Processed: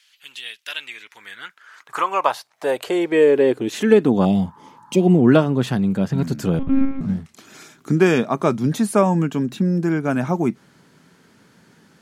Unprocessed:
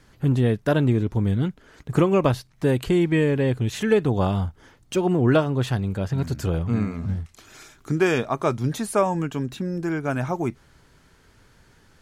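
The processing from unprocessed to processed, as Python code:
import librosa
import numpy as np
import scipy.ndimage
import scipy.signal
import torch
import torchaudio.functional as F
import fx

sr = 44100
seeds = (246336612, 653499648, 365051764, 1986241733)

y = fx.spec_repair(x, sr, seeds[0], start_s=4.28, length_s=0.89, low_hz=850.0, high_hz=1900.0, source='after')
y = fx.filter_sweep_highpass(y, sr, from_hz=2900.0, to_hz=190.0, start_s=0.61, end_s=4.35, q=2.5)
y = fx.lpc_monotone(y, sr, seeds[1], pitch_hz=270.0, order=8, at=(6.59, 7.01))
y = F.gain(torch.from_numpy(y), 2.5).numpy()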